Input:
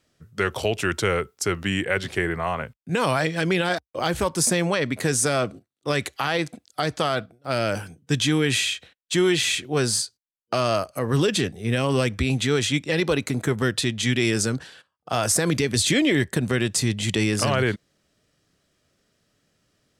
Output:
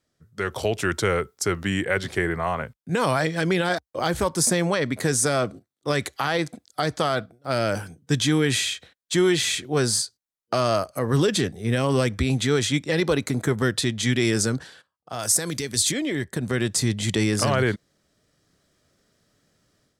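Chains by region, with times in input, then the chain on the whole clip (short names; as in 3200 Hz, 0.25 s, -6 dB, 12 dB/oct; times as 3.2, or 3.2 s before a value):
15.19–15.92 de-esser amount 25% + high shelf 3400 Hz +11.5 dB
whole clip: bell 2700 Hz -6 dB 0.41 oct; AGC gain up to 9.5 dB; gain -7 dB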